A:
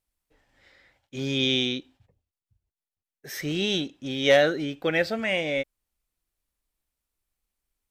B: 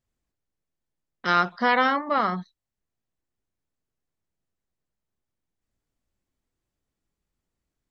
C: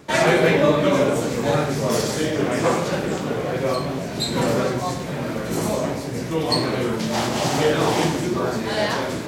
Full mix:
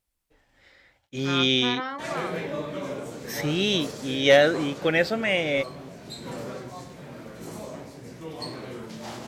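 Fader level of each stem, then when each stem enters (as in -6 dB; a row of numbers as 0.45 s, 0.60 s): +2.0 dB, -11.0 dB, -15.0 dB; 0.00 s, 0.00 s, 1.90 s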